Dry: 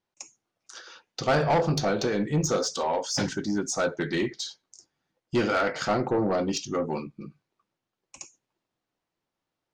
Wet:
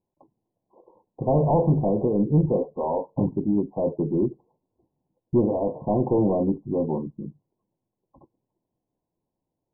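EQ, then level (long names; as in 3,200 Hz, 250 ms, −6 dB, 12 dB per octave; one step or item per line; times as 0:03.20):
linear-phase brick-wall low-pass 1,100 Hz
tilt shelving filter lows +7 dB, about 770 Hz
0.0 dB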